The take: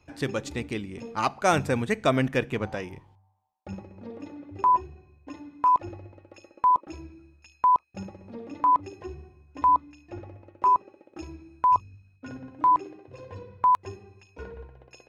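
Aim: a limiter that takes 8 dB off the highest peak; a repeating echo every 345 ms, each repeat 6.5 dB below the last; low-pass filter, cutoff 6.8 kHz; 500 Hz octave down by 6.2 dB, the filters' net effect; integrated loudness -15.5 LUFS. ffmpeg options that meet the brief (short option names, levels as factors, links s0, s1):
-af "lowpass=6800,equalizer=f=500:t=o:g=-8,alimiter=limit=0.119:level=0:latency=1,aecho=1:1:345|690|1035|1380|1725|2070:0.473|0.222|0.105|0.0491|0.0231|0.0109,volume=5.31"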